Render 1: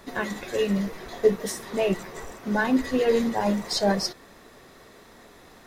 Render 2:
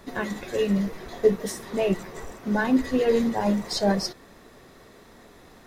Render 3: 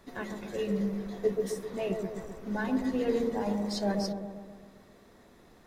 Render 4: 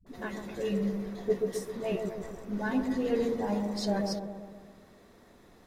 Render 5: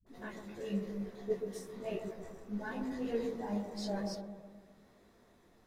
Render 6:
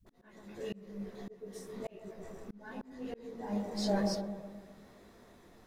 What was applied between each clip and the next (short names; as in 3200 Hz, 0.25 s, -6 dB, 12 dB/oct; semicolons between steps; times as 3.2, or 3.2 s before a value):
low shelf 430 Hz +4.5 dB; gain -2 dB
dark delay 0.131 s, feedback 58%, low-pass 800 Hz, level -3 dB; gain -9 dB
dispersion highs, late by 66 ms, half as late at 330 Hz
detuned doubles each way 34 cents; gain -4 dB
auto swell 0.771 s; gain +6.5 dB